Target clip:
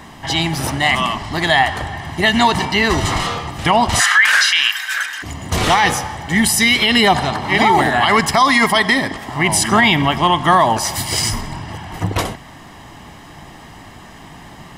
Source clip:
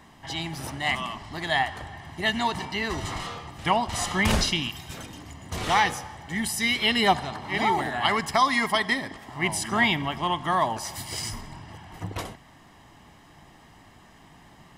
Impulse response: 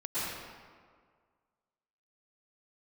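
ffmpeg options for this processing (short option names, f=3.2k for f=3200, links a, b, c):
-filter_complex "[0:a]asplit=3[a][b][c];[a]afade=t=out:st=3.99:d=0.02[d];[b]highpass=f=1.6k:t=q:w=8.5,afade=t=in:st=3.99:d=0.02,afade=t=out:st=5.22:d=0.02[e];[c]afade=t=in:st=5.22:d=0.02[f];[d][e][f]amix=inputs=3:normalize=0,alimiter=level_in=16.5dB:limit=-1dB:release=50:level=0:latency=1,volume=-2.5dB"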